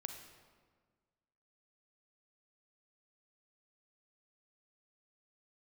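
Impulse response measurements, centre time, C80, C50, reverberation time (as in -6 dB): 30 ms, 8.0 dB, 6.0 dB, 1.6 s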